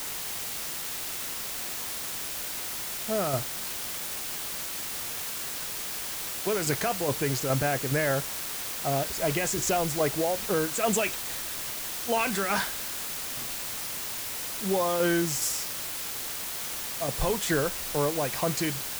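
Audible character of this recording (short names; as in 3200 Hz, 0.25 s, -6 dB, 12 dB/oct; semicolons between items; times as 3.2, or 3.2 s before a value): tremolo saw down 2.4 Hz, depth 50%; a quantiser's noise floor 6-bit, dither triangular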